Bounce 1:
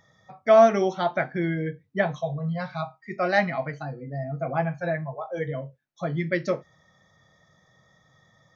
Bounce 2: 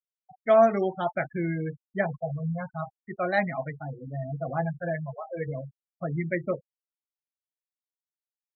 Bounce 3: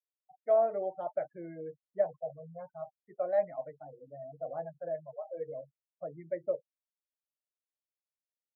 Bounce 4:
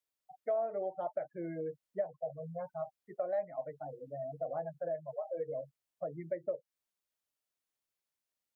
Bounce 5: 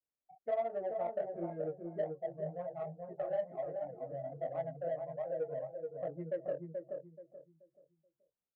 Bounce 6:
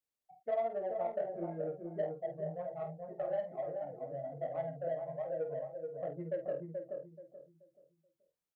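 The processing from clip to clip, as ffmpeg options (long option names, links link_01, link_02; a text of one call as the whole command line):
ffmpeg -i in.wav -af "afftfilt=real='re*gte(hypot(re,im),0.0447)':imag='im*gte(hypot(re,im),0.0447)':win_size=1024:overlap=0.75,lowshelf=frequency=87:gain=8,volume=-3.5dB" out.wav
ffmpeg -i in.wav -af "bandpass=frequency=570:width_type=q:width=4.7:csg=0,aecho=1:1:6.6:0.35" out.wav
ffmpeg -i in.wav -af "acompressor=threshold=-40dB:ratio=3,volume=5dB" out.wav
ffmpeg -i in.wav -filter_complex "[0:a]flanger=delay=16.5:depth=7.1:speed=1.3,adynamicsmooth=sensitivity=2.5:basefreq=920,asplit=2[link_01][link_02];[link_02]adelay=430,lowpass=frequency=850:poles=1,volume=-3dB,asplit=2[link_03][link_04];[link_04]adelay=430,lowpass=frequency=850:poles=1,volume=0.32,asplit=2[link_05][link_06];[link_06]adelay=430,lowpass=frequency=850:poles=1,volume=0.32,asplit=2[link_07][link_08];[link_08]adelay=430,lowpass=frequency=850:poles=1,volume=0.32[link_09];[link_01][link_03][link_05][link_07][link_09]amix=inputs=5:normalize=0,volume=2.5dB" out.wav
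ffmpeg -i in.wav -filter_complex "[0:a]asplit=2[link_01][link_02];[link_02]adelay=49,volume=-9dB[link_03];[link_01][link_03]amix=inputs=2:normalize=0" out.wav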